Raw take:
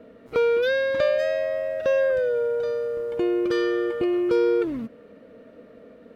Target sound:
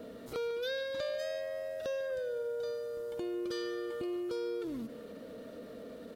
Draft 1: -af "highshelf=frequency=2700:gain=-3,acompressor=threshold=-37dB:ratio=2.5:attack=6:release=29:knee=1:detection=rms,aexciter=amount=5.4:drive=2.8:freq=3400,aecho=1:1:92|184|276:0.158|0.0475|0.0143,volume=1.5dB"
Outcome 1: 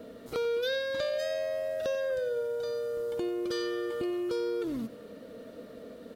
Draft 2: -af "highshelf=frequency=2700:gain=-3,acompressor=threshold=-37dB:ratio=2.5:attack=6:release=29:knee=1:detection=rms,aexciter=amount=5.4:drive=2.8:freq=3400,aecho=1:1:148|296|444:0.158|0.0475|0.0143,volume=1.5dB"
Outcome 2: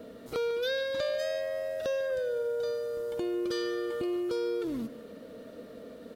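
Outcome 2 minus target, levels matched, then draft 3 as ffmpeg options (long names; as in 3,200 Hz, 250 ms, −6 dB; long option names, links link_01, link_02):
downward compressor: peak gain reduction −5 dB
-af "highshelf=frequency=2700:gain=-3,acompressor=threshold=-45.5dB:ratio=2.5:attack=6:release=29:knee=1:detection=rms,aexciter=amount=5.4:drive=2.8:freq=3400,aecho=1:1:148|296|444:0.158|0.0475|0.0143,volume=1.5dB"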